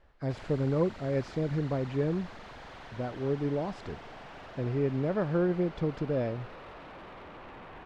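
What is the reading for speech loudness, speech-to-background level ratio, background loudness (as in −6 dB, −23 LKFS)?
−31.5 LKFS, 15.5 dB, −47.0 LKFS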